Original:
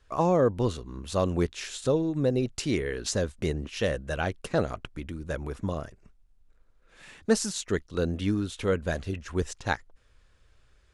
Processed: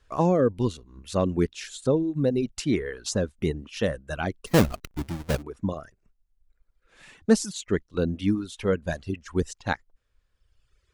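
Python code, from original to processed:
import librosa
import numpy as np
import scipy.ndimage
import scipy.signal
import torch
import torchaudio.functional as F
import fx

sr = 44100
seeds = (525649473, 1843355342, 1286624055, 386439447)

y = fx.halfwave_hold(x, sr, at=(4.46, 5.41), fade=0.02)
y = fx.dereverb_blind(y, sr, rt60_s=1.5)
y = fx.dynamic_eq(y, sr, hz=220.0, q=0.87, threshold_db=-40.0, ratio=4.0, max_db=6)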